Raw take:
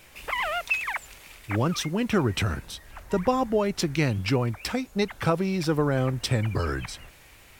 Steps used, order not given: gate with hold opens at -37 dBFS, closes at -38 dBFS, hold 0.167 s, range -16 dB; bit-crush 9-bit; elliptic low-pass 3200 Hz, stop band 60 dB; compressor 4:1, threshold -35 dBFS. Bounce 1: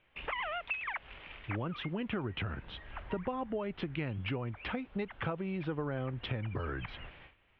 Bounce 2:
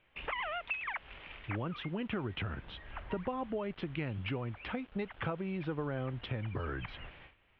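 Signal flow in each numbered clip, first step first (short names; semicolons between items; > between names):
bit-crush > gate with hold > elliptic low-pass > compressor; compressor > bit-crush > gate with hold > elliptic low-pass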